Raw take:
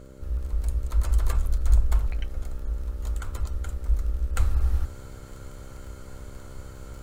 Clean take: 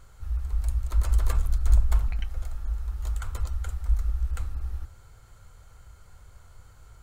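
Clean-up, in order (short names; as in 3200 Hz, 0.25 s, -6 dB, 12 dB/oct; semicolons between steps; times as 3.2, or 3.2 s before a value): de-click; de-hum 65.9 Hz, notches 9; gain 0 dB, from 4.36 s -9 dB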